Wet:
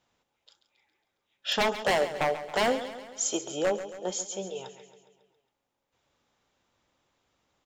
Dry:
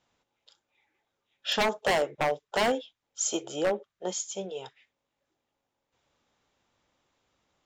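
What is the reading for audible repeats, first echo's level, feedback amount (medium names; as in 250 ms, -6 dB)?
5, -12.5 dB, 56%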